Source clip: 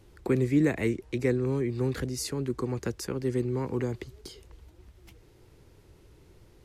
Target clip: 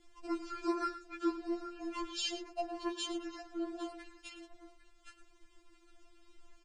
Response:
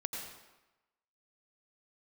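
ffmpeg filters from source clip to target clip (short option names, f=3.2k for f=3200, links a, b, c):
-filter_complex "[0:a]asetrate=27781,aresample=44100,atempo=1.5874,bandreject=f=50:t=h:w=6,bandreject=f=100:t=h:w=6,bandreject=f=150:t=h:w=6,bandreject=f=200:t=h:w=6,bandreject=f=250:t=h:w=6,bandreject=f=300:t=h:w=6,bandreject=f=350:t=h:w=6,asplit=2[a][b];[b]aecho=0:1:109|804:0.237|0.168[c];[a][c]amix=inputs=2:normalize=0,afftfilt=real='re*4*eq(mod(b,16),0)':imag='im*4*eq(mod(b,16),0)':win_size=2048:overlap=0.75,volume=1dB"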